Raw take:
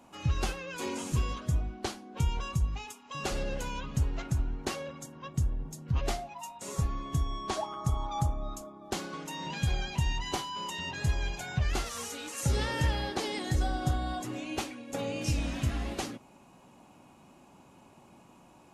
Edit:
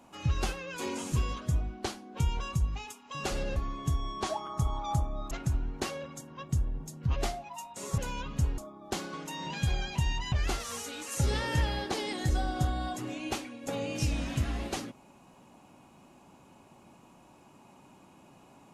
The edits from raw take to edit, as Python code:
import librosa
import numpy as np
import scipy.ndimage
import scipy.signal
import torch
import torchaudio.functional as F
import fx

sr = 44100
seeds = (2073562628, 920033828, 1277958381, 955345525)

y = fx.edit(x, sr, fx.swap(start_s=3.56, length_s=0.6, other_s=6.83, other_length_s=1.75),
    fx.cut(start_s=10.32, length_s=1.26), tone=tone)